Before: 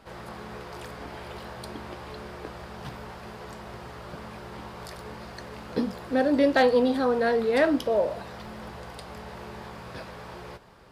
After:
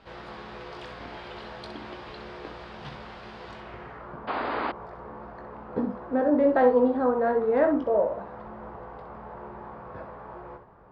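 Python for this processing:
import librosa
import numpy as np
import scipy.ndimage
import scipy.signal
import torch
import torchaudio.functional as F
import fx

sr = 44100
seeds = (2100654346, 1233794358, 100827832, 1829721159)

y = fx.room_early_taps(x, sr, ms=(20, 64), db=(-8.5, -8.5))
y = fx.spec_paint(y, sr, seeds[0], shape='noise', start_s=4.27, length_s=0.45, low_hz=230.0, high_hz=5000.0, level_db=-24.0)
y = fx.filter_sweep_lowpass(y, sr, from_hz=3800.0, to_hz=1100.0, start_s=3.49, end_s=4.22, q=1.3)
y = y * 10.0 ** (-2.0 / 20.0)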